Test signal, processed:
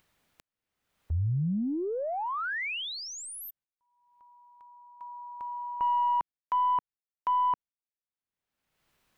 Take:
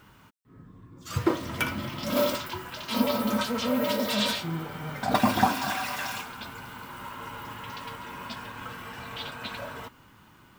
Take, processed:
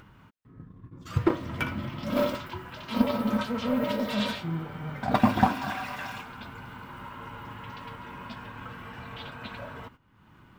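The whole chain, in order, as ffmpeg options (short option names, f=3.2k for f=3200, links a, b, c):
-af "agate=range=-16dB:threshold=-48dB:ratio=16:detection=peak,aeval=exprs='0.422*(cos(1*acos(clip(val(0)/0.422,-1,1)))-cos(1*PI/2))+0.0168*(cos(2*acos(clip(val(0)/0.422,-1,1)))-cos(2*PI/2))+0.0188*(cos(7*acos(clip(val(0)/0.422,-1,1)))-cos(7*PI/2))':c=same,bass=f=250:g=5,treble=f=4k:g=-11,acompressor=mode=upward:threshold=-38dB:ratio=2.5"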